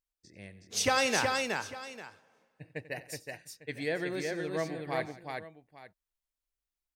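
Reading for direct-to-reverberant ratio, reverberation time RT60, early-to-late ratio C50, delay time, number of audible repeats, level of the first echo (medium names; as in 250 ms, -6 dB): no reverb, no reverb, no reverb, 91 ms, 4, -17.0 dB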